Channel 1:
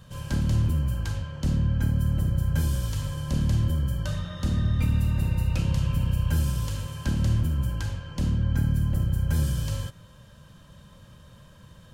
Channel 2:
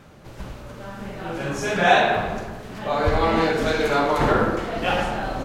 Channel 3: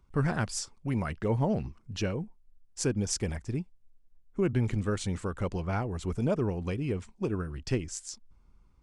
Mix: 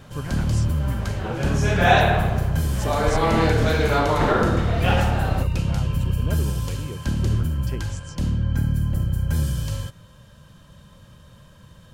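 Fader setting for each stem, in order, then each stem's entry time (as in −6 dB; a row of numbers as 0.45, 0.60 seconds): +2.0, −0.5, −5.0 decibels; 0.00, 0.00, 0.00 seconds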